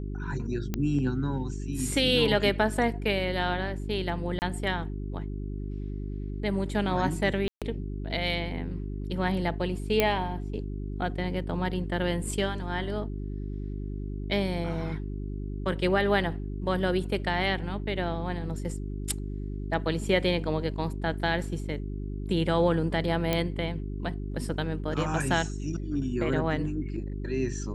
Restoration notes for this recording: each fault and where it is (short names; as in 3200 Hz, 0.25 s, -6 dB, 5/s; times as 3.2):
hum 50 Hz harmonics 8 -34 dBFS
0.74 pop -15 dBFS
4.39–4.42 gap 29 ms
7.48–7.62 gap 0.137 s
10 pop -8 dBFS
23.33 pop -11 dBFS